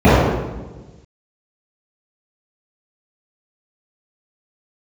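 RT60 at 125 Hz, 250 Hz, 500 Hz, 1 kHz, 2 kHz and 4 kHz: 1.7 s, 1.5 s, 1.3 s, 1.1 s, 0.95 s, 0.85 s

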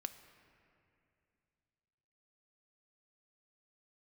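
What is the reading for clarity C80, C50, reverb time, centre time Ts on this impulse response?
12.0 dB, 11.0 dB, 2.6 s, 18 ms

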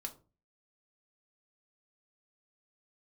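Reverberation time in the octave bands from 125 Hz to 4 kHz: 0.50 s, 0.45 s, 0.35 s, 0.30 s, 0.25 s, 0.20 s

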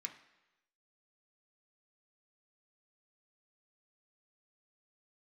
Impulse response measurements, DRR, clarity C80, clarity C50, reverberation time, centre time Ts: 2.5 dB, 13.5 dB, 11.0 dB, 1.0 s, 13 ms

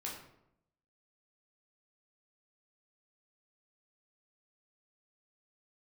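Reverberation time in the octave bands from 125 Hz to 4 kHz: 0.95 s, 0.90 s, 0.85 s, 0.75 s, 0.60 s, 0.50 s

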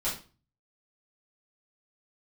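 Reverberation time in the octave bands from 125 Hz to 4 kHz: 0.65 s, 0.45 s, 0.35 s, 0.35 s, 0.30 s, 0.30 s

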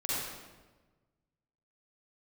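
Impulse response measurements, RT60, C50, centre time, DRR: 1.3 s, -6.0 dB, 112 ms, -9.0 dB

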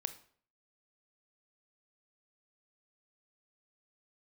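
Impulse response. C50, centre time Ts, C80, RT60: 14.0 dB, 6 ms, 18.0 dB, 0.55 s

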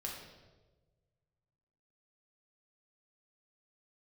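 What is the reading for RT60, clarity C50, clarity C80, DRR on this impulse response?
1.3 s, 2.5 dB, 5.0 dB, -2.0 dB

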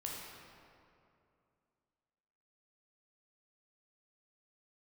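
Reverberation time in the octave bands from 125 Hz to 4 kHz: 2.8 s, 2.8 s, 2.7 s, 2.5 s, 2.0 s, 1.5 s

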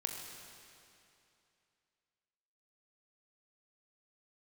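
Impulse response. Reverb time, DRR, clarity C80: 2.7 s, 2.0 dB, 4.0 dB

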